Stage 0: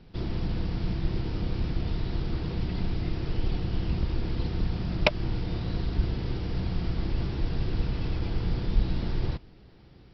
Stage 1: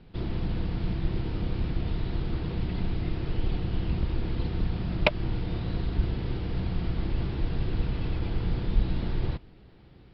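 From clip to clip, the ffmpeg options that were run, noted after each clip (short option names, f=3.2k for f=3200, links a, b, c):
-af "lowpass=f=4.2k:w=0.5412,lowpass=f=4.2k:w=1.3066"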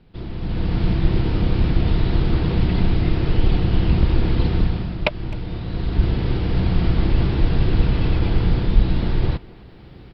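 -filter_complex "[0:a]asplit=2[a][b];[b]adelay=260,highpass=300,lowpass=3.4k,asoftclip=type=hard:threshold=-12.5dB,volume=-20dB[c];[a][c]amix=inputs=2:normalize=0,dynaudnorm=f=380:g=3:m=13dB,volume=-1dB"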